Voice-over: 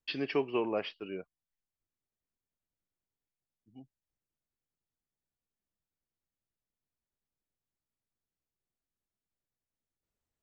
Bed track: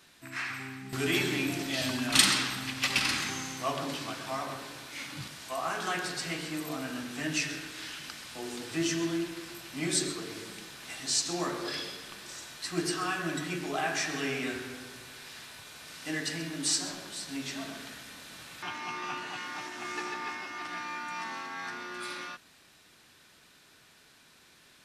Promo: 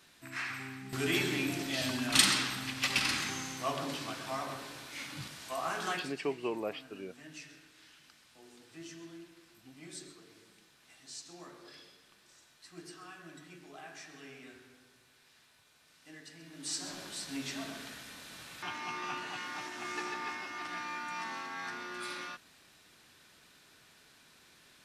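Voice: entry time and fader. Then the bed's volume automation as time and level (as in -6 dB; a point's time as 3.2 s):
5.90 s, -4.0 dB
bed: 5.92 s -2.5 dB
6.21 s -18 dB
16.35 s -18 dB
17.01 s -2 dB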